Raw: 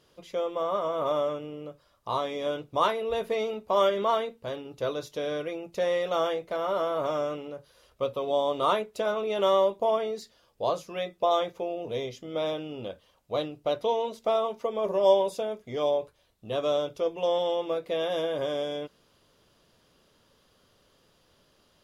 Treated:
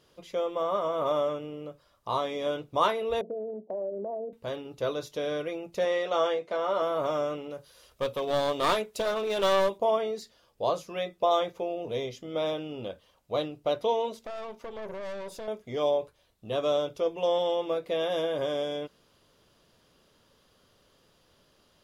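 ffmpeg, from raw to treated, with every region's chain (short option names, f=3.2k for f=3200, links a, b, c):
-filter_complex "[0:a]asettb=1/sr,asplit=3[a][b][c];[a]atrim=end=3.214[d];[b]atrim=start=3.21:end=4.33,asetpts=PTS-STARTPTS,afade=t=in:d=0.004:c=qsin,afade=t=out:st=1.116:d=0.004:c=qsin,asuperpass=centerf=360:order=12:qfactor=0.65,acompressor=threshold=-33dB:ratio=3:attack=3.2:release=140:knee=1:detection=peak[e];[c]atrim=start=4.326[f];[d][e]acrossfade=d=0.004:c1=hsin:c2=qsin[g];[g][f]acrossfade=d=0.004:c1=qsin:c2=hsin,asettb=1/sr,asplit=3[h][i][j];[h]atrim=end=5.854[k];[i]atrim=start=5.85:end=6.82,asetpts=PTS-STARTPTS,afade=t=in:d=0.004:c=qsin,afade=t=out:st=0.966:d=0.004:c=qsin,highpass=200,lowpass=7.9k,asplit=2[l][m];[m]adelay=14,volume=-10.5dB[n];[l][n]amix=inputs=2:normalize=0,atrim=end_sample=42777[o];[j]atrim=start=6.816[p];[k][o]acrossfade=d=0.004:c1=hsin:c2=qsin[q];[q][p]acrossfade=d=0.004:c1=qsin:c2=hsin,asettb=1/sr,asplit=3[r][s][t];[r]atrim=end=7.504[u];[s]atrim=start=7.5:end=9.78,asetpts=PTS-STARTPTS,afade=t=in:d=0.004:c=qsin,afade=t=out:st=2.276:d=0.004:c=qsin,aeval=exprs='clip(val(0),-1,0.0447)':c=same,highshelf=f=3.1k:g=7.5[v];[t]atrim=start=9.776[w];[u][v]acrossfade=d=0.004:c1=hsin:c2=qsin[x];[x][w]acrossfade=d=0.004:c1=qsin:c2=hsin,asettb=1/sr,asplit=3[y][z][aa];[y]atrim=end=14.244[ab];[z]atrim=start=14.24:end=15.48,asetpts=PTS-STARTPTS,afade=t=in:d=0.004:c=qsin,afade=t=out:st=1.236:d=0.004:c=qsin,acompressor=threshold=-33dB:ratio=2:attack=3.2:release=140:knee=1:detection=peak,aeval=exprs='(tanh(56.2*val(0)+0.6)-tanh(0.6))/56.2':c=same[ac];[aa]atrim=start=15.476[ad];[ab][ac]acrossfade=d=0.004:c1=hsin:c2=qsin[ae];[ae][ad]acrossfade=d=0.004:c1=qsin:c2=hsin"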